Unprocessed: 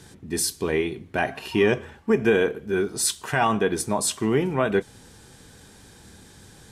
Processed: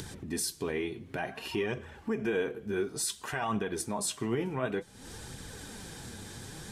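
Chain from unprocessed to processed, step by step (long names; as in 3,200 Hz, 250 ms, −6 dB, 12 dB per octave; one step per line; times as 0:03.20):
in parallel at +2 dB: downward compressor, threshold −36 dBFS, peak gain reduction 19.5 dB
on the sum: brickwall limiter −12 dBFS, peak gain reduction 5 dB
flanger 0.56 Hz, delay 0.2 ms, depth 9.6 ms, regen +51%
upward compression, threshold −30 dBFS
level −5.5 dB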